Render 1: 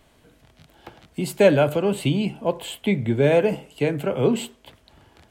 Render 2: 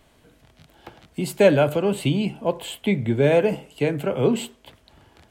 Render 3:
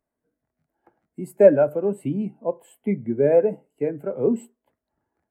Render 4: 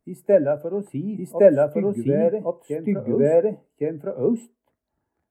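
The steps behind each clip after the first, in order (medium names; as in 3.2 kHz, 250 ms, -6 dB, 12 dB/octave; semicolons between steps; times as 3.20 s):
no audible change
FFT filter 110 Hz 0 dB, 230 Hz +7 dB, 1.9 kHz +8 dB, 3.4 kHz -6 dB, 5.4 kHz +4 dB, 11 kHz +12 dB; spectral contrast expander 1.5:1; trim -5 dB
bass shelf 130 Hz +5.5 dB; reverse echo 1112 ms -3 dB; trim -1 dB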